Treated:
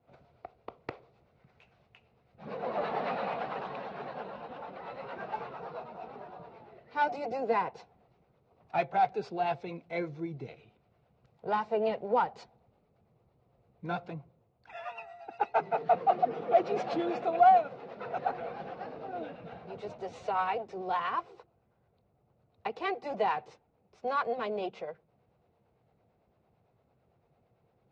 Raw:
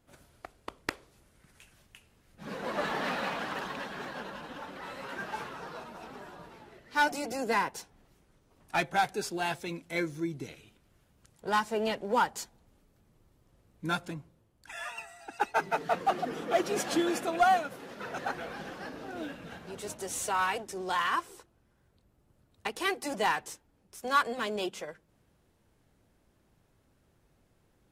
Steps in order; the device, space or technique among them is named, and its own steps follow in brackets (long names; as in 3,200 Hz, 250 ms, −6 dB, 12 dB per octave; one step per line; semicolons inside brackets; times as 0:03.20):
guitar amplifier with harmonic tremolo (two-band tremolo in antiphase 8.9 Hz, depth 50%, crossover 420 Hz; soft clipping −19.5 dBFS, distortion −20 dB; loudspeaker in its box 78–3,700 Hz, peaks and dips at 130 Hz +4 dB, 290 Hz −6 dB, 470 Hz +6 dB, 720 Hz +9 dB, 1,700 Hz −8 dB, 3,200 Hz −8 dB)